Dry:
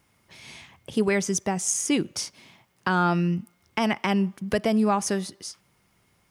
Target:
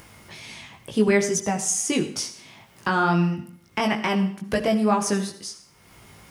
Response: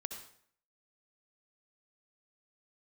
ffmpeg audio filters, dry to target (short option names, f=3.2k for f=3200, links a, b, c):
-filter_complex "[0:a]acompressor=mode=upward:threshold=-37dB:ratio=2.5,flanger=delay=18:depth=2:speed=2.2,asplit=2[a][b];[1:a]atrim=start_sample=2205[c];[b][c]afir=irnorm=-1:irlink=0,volume=0dB[d];[a][d]amix=inputs=2:normalize=0"